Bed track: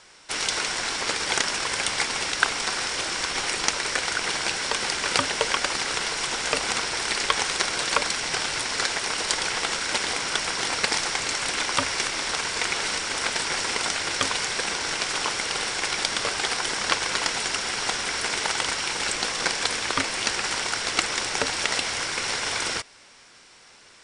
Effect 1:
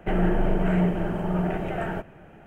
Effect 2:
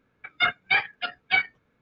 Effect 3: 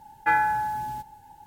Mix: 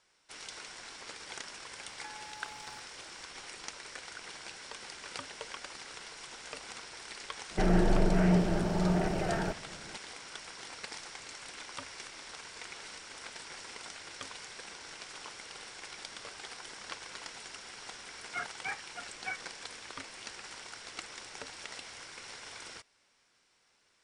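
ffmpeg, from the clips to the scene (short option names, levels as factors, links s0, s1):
-filter_complex "[0:a]volume=0.106[s0];[3:a]acompressor=threshold=0.0224:ratio=4:attack=36:release=138:knee=1:detection=peak[s1];[2:a]asuperstop=centerf=4400:order=4:qfactor=0.63[s2];[s1]atrim=end=1.46,asetpts=PTS-STARTPTS,volume=0.126,afade=t=in:d=0.004:c=hsin,afade=t=out:st=1.456:d=0.004:c=hsin,adelay=1780[s3];[1:a]atrim=end=2.46,asetpts=PTS-STARTPTS,volume=0.708,afade=t=in:d=0.004:c=hsin,afade=t=out:st=2.456:d=0.004:c=hsin,adelay=7510[s4];[s2]atrim=end=1.81,asetpts=PTS-STARTPTS,volume=0.237,afade=t=in:d=0.004:c=hsin,afade=t=out:st=1.806:d=0.004:c=hsin,adelay=17940[s5];[s0][s3][s4][s5]amix=inputs=4:normalize=0"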